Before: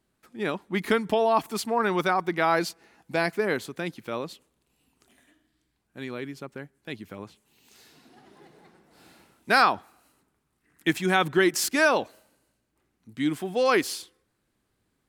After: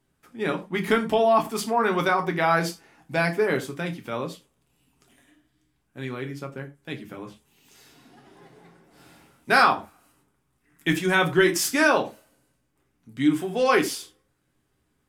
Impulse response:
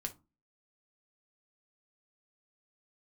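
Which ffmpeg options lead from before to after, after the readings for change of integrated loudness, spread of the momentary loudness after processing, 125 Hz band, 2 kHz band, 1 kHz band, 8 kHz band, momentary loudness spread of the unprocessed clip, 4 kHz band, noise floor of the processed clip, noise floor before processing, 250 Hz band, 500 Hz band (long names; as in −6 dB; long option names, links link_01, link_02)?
+2.0 dB, 16 LU, +5.0 dB, +2.5 dB, +2.0 dB, +2.0 dB, 18 LU, +1.0 dB, −72 dBFS, −75 dBFS, +2.5 dB, +2.0 dB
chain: -filter_complex "[0:a]bandreject=frequency=4200:width=11[link_01];[1:a]atrim=start_sample=2205,atrim=end_sample=3969,asetrate=31752,aresample=44100[link_02];[link_01][link_02]afir=irnorm=-1:irlink=0,volume=1.5dB"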